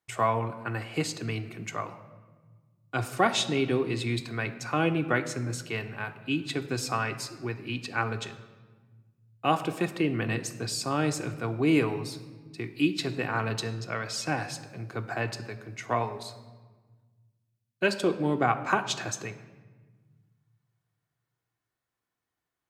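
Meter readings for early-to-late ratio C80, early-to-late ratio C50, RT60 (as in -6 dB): 14.0 dB, 12.5 dB, 1.4 s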